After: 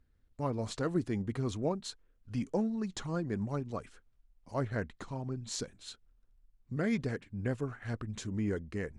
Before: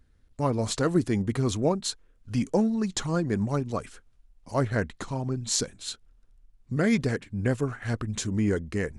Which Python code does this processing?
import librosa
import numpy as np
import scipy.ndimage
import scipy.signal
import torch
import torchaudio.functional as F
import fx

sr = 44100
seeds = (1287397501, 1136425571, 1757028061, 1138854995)

y = fx.high_shelf(x, sr, hz=6000.0, db=-9.0)
y = y * librosa.db_to_amplitude(-8.0)